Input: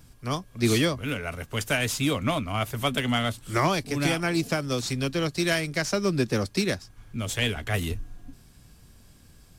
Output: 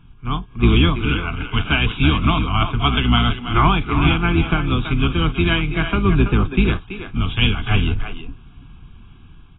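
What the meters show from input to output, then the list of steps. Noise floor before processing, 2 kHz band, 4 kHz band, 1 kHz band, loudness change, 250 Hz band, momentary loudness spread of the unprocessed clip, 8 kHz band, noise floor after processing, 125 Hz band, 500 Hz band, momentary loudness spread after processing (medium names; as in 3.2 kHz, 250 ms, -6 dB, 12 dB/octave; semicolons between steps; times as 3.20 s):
-54 dBFS, +6.5 dB, +7.5 dB, +9.0 dB, +8.0 dB, +8.0 dB, 8 LU, under -40 dB, -44 dBFS, +11.0 dB, +1.5 dB, 8 LU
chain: octave divider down 2 oct, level 0 dB; level rider gain up to 4 dB; static phaser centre 2.8 kHz, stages 8; speakerphone echo 330 ms, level -8 dB; trim +6 dB; AAC 16 kbps 16 kHz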